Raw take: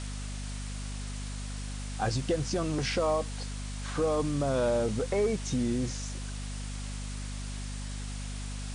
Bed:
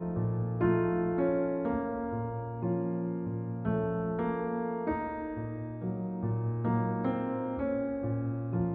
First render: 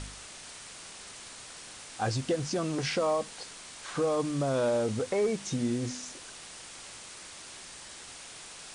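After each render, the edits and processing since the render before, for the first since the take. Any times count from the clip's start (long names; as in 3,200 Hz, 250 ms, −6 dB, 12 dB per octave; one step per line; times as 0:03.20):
hum removal 50 Hz, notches 5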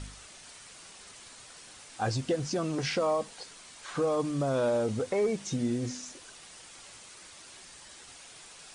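broadband denoise 6 dB, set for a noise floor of −47 dBFS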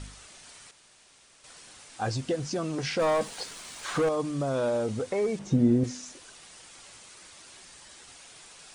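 0:00.71–0:01.44: fill with room tone
0:02.99–0:04.09: leveller curve on the samples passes 2
0:05.39–0:05.84: tilt shelving filter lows +9 dB, about 1,400 Hz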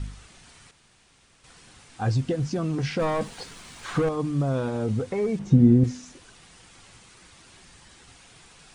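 bass and treble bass +10 dB, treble −5 dB
notch filter 600 Hz, Q 12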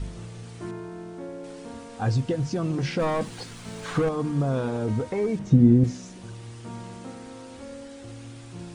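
mix in bed −9 dB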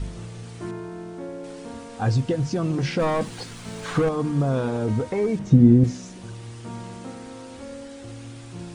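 level +2.5 dB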